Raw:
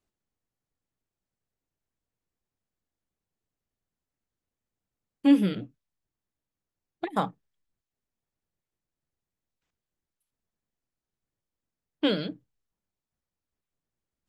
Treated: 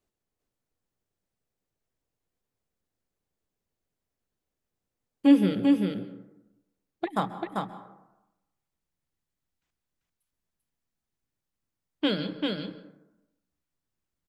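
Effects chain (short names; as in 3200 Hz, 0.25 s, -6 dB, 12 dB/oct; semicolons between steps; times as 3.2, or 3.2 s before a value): bell 480 Hz +4 dB 0.98 oct, from 7.06 s -3 dB; echo 0.392 s -3.5 dB; plate-style reverb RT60 0.95 s, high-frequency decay 0.4×, pre-delay 0.12 s, DRR 13.5 dB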